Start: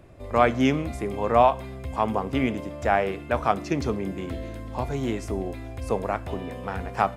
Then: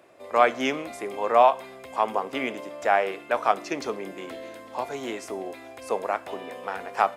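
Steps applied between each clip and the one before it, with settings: HPF 450 Hz 12 dB/oct; gain +1.5 dB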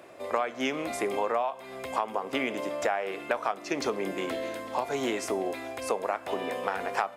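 compressor 16:1, threshold -30 dBFS, peak gain reduction 19 dB; gain +5.5 dB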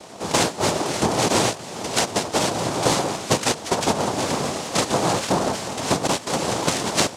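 noise vocoder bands 2; gain +8.5 dB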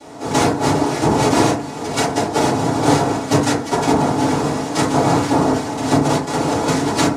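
reverb RT60 0.45 s, pre-delay 4 ms, DRR -10 dB; gain -7 dB

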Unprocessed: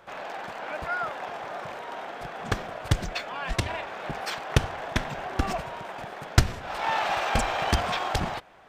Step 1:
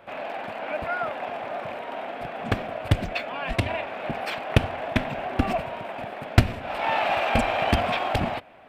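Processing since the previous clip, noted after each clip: fifteen-band EQ 100 Hz +6 dB, 250 Hz +10 dB, 630 Hz +8 dB, 2500 Hz +8 dB, 6300 Hz -9 dB; gain -2 dB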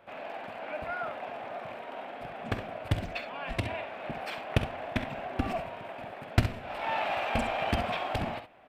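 early reflections 48 ms -15 dB, 66 ms -10.5 dB; gain -7.5 dB

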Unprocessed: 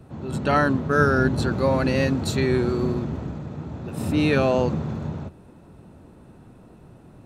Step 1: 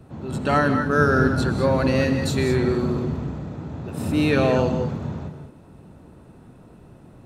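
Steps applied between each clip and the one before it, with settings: non-linear reverb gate 0.23 s rising, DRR 6.5 dB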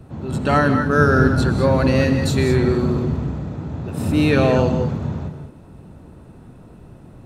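low shelf 110 Hz +6 dB; gain +2.5 dB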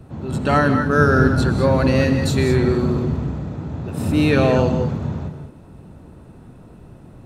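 nothing audible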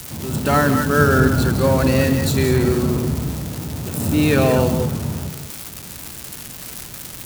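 switching spikes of -17 dBFS

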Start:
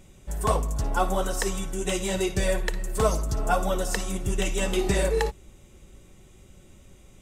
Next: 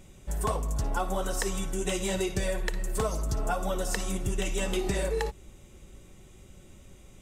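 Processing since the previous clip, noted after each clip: compressor, threshold -25 dBFS, peak gain reduction 8.5 dB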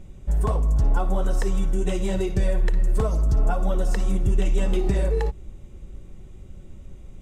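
tilt -2.5 dB/oct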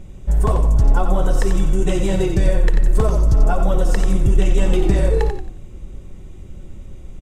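frequency-shifting echo 90 ms, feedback 32%, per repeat -40 Hz, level -7 dB; gain +5.5 dB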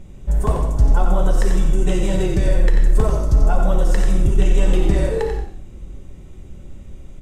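non-linear reverb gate 0.17 s flat, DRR 4.5 dB; gain -2 dB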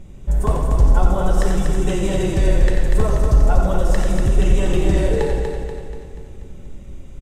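feedback echo 0.241 s, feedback 50%, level -5 dB

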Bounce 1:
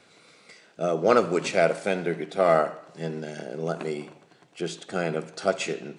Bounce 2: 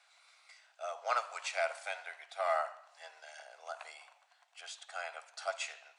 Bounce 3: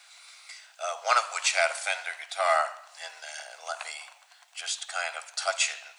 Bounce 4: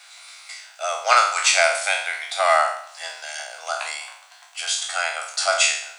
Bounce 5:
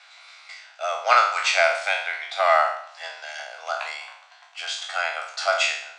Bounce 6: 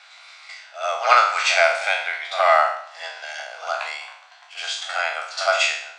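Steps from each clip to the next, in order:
steep high-pass 680 Hz 48 dB/oct; gain -8 dB
tilt +3 dB/oct; gain +8.5 dB
spectral trails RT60 0.59 s; gain +5.5 dB
air absorption 150 m
reverse echo 68 ms -11 dB; gain +2 dB

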